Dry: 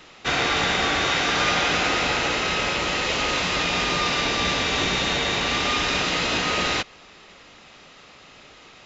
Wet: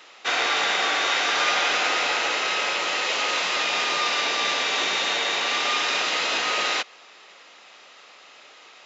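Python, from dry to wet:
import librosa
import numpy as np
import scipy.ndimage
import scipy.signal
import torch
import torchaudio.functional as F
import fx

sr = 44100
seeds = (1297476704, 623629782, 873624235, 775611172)

y = scipy.signal.sosfilt(scipy.signal.butter(2, 510.0, 'highpass', fs=sr, output='sos'), x)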